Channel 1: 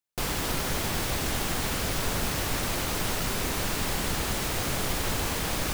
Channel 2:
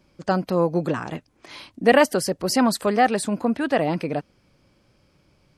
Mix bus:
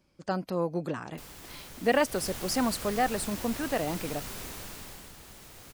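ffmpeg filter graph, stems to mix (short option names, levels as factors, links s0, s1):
-filter_complex "[0:a]adelay=1000,volume=0.251,afade=t=in:st=2.05:d=0.21:silence=0.421697,afade=t=out:st=4.39:d=0.74:silence=0.316228[s0];[1:a]volume=0.355[s1];[s0][s1]amix=inputs=2:normalize=0,highshelf=f=5800:g=5"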